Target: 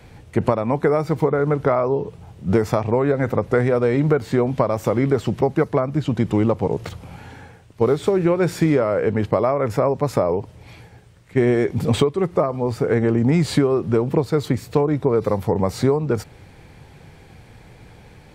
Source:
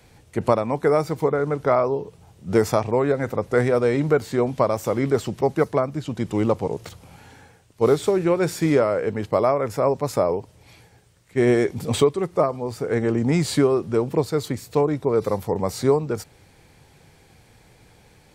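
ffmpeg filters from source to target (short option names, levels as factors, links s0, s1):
-af "acompressor=threshold=0.0794:ratio=4,bass=f=250:g=3,treble=f=4000:g=-8,volume=2.11"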